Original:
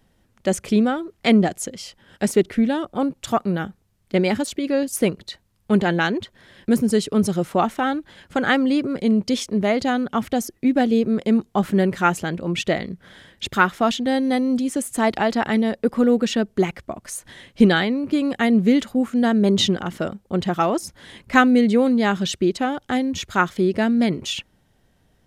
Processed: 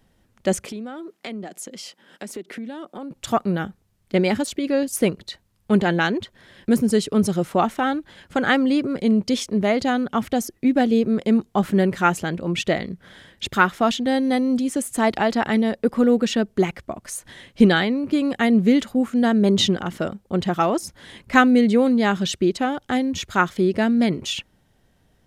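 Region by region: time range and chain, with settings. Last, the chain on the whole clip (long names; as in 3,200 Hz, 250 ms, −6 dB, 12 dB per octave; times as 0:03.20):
0:00.65–0:03.11: high-pass filter 190 Hz 24 dB per octave + downward compressor 5 to 1, threshold −31 dBFS
whole clip: no processing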